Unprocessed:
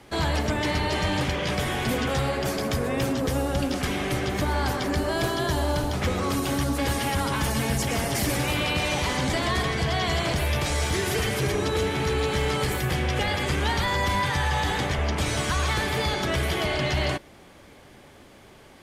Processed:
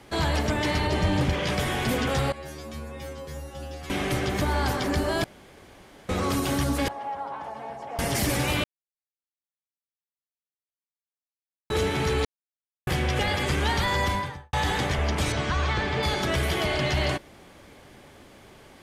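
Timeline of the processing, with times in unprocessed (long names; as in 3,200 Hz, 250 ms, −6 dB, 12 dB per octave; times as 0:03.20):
0:00.87–0:01.33: tilt shelving filter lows +4 dB, about 630 Hz
0:02.32–0:03.90: stiff-string resonator 74 Hz, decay 0.75 s, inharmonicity 0.002
0:05.24–0:06.09: fill with room tone
0:06.88–0:07.99: resonant band-pass 770 Hz, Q 3.2
0:08.64–0:11.70: silence
0:12.25–0:12.87: silence
0:14.00–0:14.53: fade out and dull
0:15.32–0:16.03: high-frequency loss of the air 140 metres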